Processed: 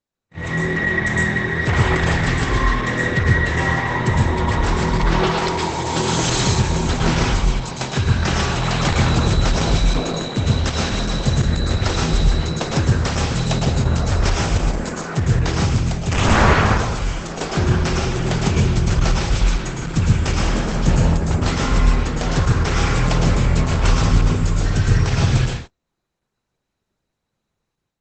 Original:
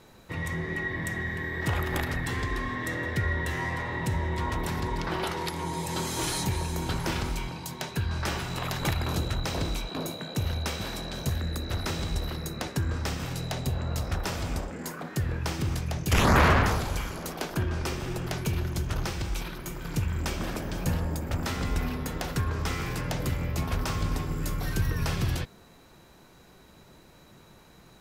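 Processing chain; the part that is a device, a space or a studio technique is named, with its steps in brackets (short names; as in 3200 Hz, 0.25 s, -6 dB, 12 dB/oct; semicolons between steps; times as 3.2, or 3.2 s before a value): 7.23–7.65 bell 2400 Hz -3 dB 0.26 oct; speakerphone in a meeting room (reverb RT60 0.40 s, pre-delay 0.103 s, DRR -0.5 dB; AGC gain up to 10 dB; gate -30 dBFS, range -36 dB; Opus 12 kbps 48000 Hz)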